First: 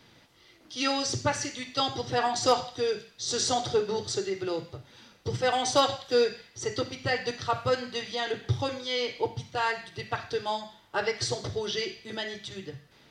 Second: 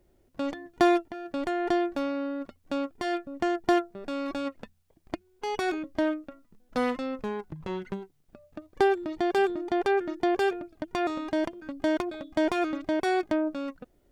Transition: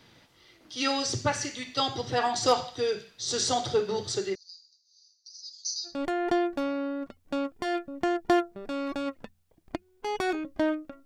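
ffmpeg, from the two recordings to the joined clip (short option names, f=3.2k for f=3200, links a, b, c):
-filter_complex "[0:a]asettb=1/sr,asplit=3[a][b][c];[a]atrim=end=4.354[d];[b]atrim=start=4.35:end=6.01,asetpts=PTS-STARTPTS,afade=t=in:d=0.004:c=qsin,afade=t=out:st=1.656:d=0.004:c=qsin,asuperpass=centerf=5300:order=12:qfactor=2.2[e];[c]atrim=start=6.006[f];[d][e]acrossfade=d=0.004:c1=hsin:c2=qsin[g];[g][f]acrossfade=d=0.004:c1=qsin:c2=hsin,apad=whole_dur=11.05,atrim=end=11.05,atrim=end=6.01,asetpts=PTS-STARTPTS[h];[1:a]atrim=start=1.22:end=6.44,asetpts=PTS-STARTPTS[i];[h][i]acrossfade=d=0.18:c1=tri:c2=tri"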